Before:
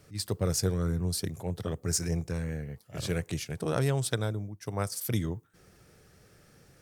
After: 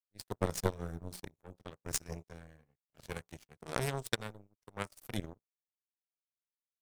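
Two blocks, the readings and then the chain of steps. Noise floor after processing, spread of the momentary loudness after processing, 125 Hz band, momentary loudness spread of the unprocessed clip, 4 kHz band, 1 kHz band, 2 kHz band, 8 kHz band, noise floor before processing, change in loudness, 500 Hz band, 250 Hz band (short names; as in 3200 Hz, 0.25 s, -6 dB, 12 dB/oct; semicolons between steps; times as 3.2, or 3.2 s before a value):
under -85 dBFS, 18 LU, -12.5 dB, 9 LU, -7.0 dB, -3.0 dB, -3.0 dB, -9.0 dB, -61 dBFS, -7.5 dB, -7.5 dB, -10.5 dB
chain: half-wave gain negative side -3 dB; de-hum 59.76 Hz, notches 24; power-law curve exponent 3; gain +8 dB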